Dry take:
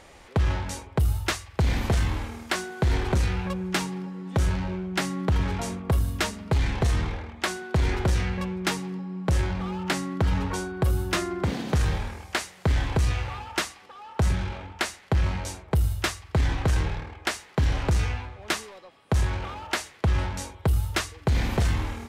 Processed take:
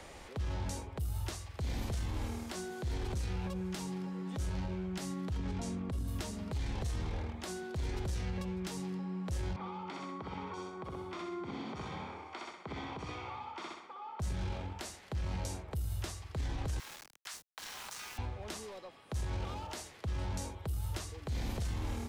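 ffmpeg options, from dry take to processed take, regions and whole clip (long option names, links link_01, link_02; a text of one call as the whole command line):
ffmpeg -i in.wav -filter_complex "[0:a]asettb=1/sr,asplit=3[link_01][link_02][link_03];[link_01]atrim=end=5.364[link_04];[link_02]atrim=start=5.36:end=6.08,asetpts=PTS-STARTPTS,afade=type=in:duration=0.004:curve=qsin,afade=type=out:start_time=0.716:duration=0.004:curve=qsin,lowpass=9100,equalizer=frequency=240:width=1.1:gain=9.5[link_05];[link_03]atrim=start=6.076[link_06];[link_04][link_05]acrossfade=duration=0.004:curve1=hsin:curve2=qsin[link_07];[link_07][link_06]acrossfade=duration=0.004:curve1=qsin:curve2=hsin,asettb=1/sr,asplit=3[link_08][link_09][link_10];[link_08]atrim=end=9.564[link_11];[link_09]atrim=start=9.56:end=14.2,asetpts=PTS-STARTPTS,afade=type=in:duration=0.004:curve=qsin,afade=type=out:start_time=4.636:duration=0.004:curve=qsin,highpass=390,lowpass=2200,aecho=1:1:0.9:0.54,atrim=end_sample=204624,aecho=1:1:63|126|189|252|315:0.631|0.246|0.096|0.0374|0.0146,atrim=end_sample=204624[link_12];[link_10]atrim=start=14.196[link_13];[link_11][link_12]acrossfade=duration=0.004:curve1=hsin:curve2=qsin[link_14];[link_14][link_13]acrossfade=duration=0.004:curve1=qsin:curve2=hsin,asettb=1/sr,asplit=3[link_15][link_16][link_17];[link_15]atrim=end=16.794[link_18];[link_16]atrim=start=16.79:end=18.18,asetpts=PTS-STARTPTS,afade=type=in:duration=0.004:curve=qsin,afade=type=out:start_time=1.386:duration=0.004:curve=qsin,highpass=frequency=1100:width=0.5412,highpass=frequency=1100:width=1.3066,aeval=exprs='val(0)*gte(abs(val(0)),0.00944)':channel_layout=same[link_19];[link_17]atrim=start=18.176[link_20];[link_18][link_19]acrossfade=duration=0.004:curve1=hsin:curve2=qsin[link_21];[link_21][link_20]acrossfade=duration=0.004:curve1=qsin:curve2=hsin,acompressor=threshold=-28dB:ratio=4,alimiter=level_in=1.5dB:limit=-24dB:level=0:latency=1:release=62,volume=-1.5dB,acrossover=split=120|260|940|3400[link_22][link_23][link_24][link_25][link_26];[link_22]acompressor=threshold=-34dB:ratio=4[link_27];[link_23]acompressor=threshold=-45dB:ratio=4[link_28];[link_24]acompressor=threshold=-44dB:ratio=4[link_29];[link_25]acompressor=threshold=-56dB:ratio=4[link_30];[link_26]acompressor=threshold=-45dB:ratio=4[link_31];[link_27][link_28][link_29][link_30][link_31]amix=inputs=5:normalize=0" out.wav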